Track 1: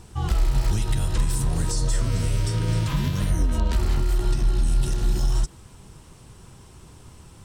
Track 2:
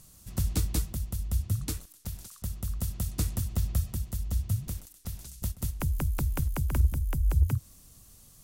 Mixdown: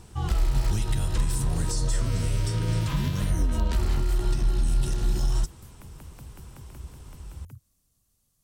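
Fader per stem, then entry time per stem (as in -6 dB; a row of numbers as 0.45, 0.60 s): -2.5, -17.0 dB; 0.00, 0.00 s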